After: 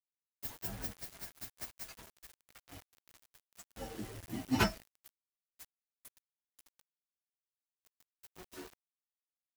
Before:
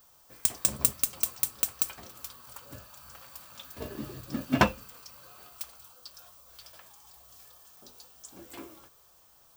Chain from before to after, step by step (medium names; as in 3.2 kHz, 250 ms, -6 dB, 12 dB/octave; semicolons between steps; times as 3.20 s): frequency axis rescaled in octaves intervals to 129%; bit crusher 8-bit; trim -2 dB